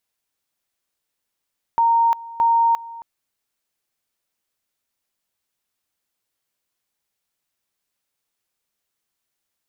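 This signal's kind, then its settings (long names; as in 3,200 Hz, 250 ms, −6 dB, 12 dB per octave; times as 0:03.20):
tone at two levels in turn 925 Hz −13 dBFS, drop 19.5 dB, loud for 0.35 s, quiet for 0.27 s, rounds 2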